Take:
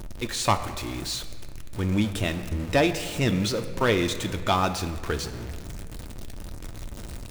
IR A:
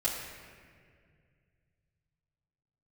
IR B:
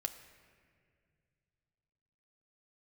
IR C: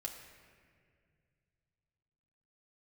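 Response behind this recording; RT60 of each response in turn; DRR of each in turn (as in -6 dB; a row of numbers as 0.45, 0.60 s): B; 2.1, 2.1, 2.1 s; -8.5, 6.5, 0.5 dB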